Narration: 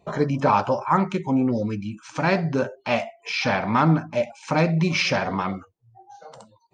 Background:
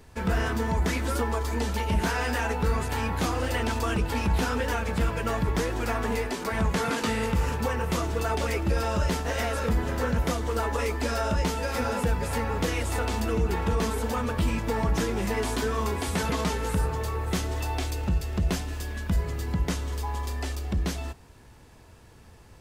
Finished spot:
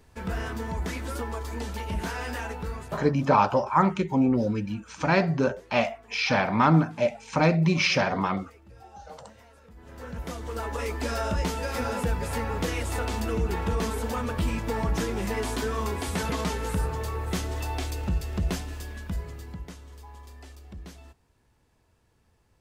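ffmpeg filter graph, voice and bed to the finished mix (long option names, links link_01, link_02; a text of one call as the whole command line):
ffmpeg -i stem1.wav -i stem2.wav -filter_complex "[0:a]adelay=2850,volume=-1dB[link_01];[1:a]volume=19.5dB,afade=type=out:start_time=2.38:duration=0.86:silence=0.0891251,afade=type=in:start_time=9.75:duration=1.36:silence=0.0562341,afade=type=out:start_time=18.43:duration=1.3:silence=0.211349[link_02];[link_01][link_02]amix=inputs=2:normalize=0" out.wav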